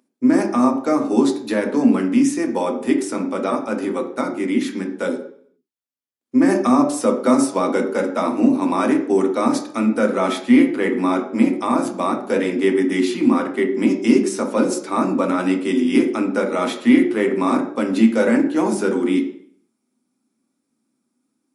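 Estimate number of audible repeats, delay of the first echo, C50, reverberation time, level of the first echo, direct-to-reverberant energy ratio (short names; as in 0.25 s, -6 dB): none, none, 8.0 dB, 0.55 s, none, 3.0 dB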